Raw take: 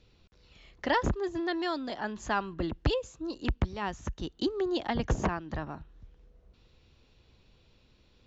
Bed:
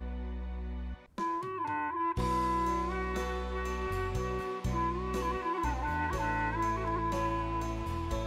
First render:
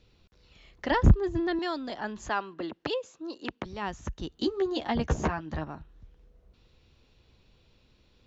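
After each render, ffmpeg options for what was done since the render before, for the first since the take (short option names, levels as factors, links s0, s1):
-filter_complex "[0:a]asettb=1/sr,asplit=3[s0][s1][s2];[s0]atrim=end=0.914[s3];[s1]atrim=start=0.91:end=1.59,asetpts=PTS-STARTPTS,afade=t=in:d=0.004:c=qsin,afade=t=out:st=0.676:d=0.004:c=qsin,bass=f=250:g=14,treble=f=4000:g=-4[s4];[s2]atrim=start=1.586[s5];[s3][s4]acrossfade=d=0.004:c1=hsin:c2=qsin[s6];[s6][s5]acrossfade=d=0.004:c1=qsin:c2=hsin,asettb=1/sr,asplit=3[s7][s8][s9];[s7]atrim=end=2.294[s10];[s8]atrim=start=2.29:end=3.66,asetpts=PTS-STARTPTS,afade=t=in:d=0.004:c=qsin,afade=t=out:st=1.366:d=0.004:c=qsin,highpass=290,lowpass=6600[s11];[s9]atrim=start=3.656[s12];[s10][s11]acrossfade=d=0.004:c1=hsin:c2=qsin[s13];[s13][s12]acrossfade=d=0.004:c1=qsin:c2=hsin,asettb=1/sr,asplit=3[s14][s15][s16];[s14]atrim=end=4.304[s17];[s15]atrim=start=4.3:end=5.64,asetpts=PTS-STARTPTS,afade=t=in:d=0.004:c=qsin,afade=t=out:st=1.336:d=0.004:c=qsin,asplit=2[s18][s19];[s19]adelay=13,volume=0.562[s20];[s18][s20]amix=inputs=2:normalize=0,atrim=end_sample=59094[s21];[s16]atrim=start=5.636[s22];[s17][s21]acrossfade=d=0.004:c1=hsin:c2=qsin[s23];[s23][s22]acrossfade=d=0.004:c1=qsin:c2=hsin"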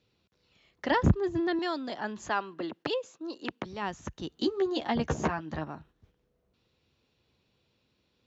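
-af "agate=range=0.447:threshold=0.00282:ratio=16:detection=peak,highpass=110"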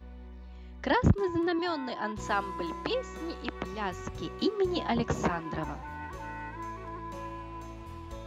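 -filter_complex "[1:a]volume=0.398[s0];[0:a][s0]amix=inputs=2:normalize=0"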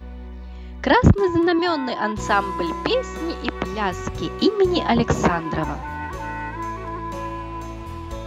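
-af "volume=3.35,alimiter=limit=0.891:level=0:latency=1"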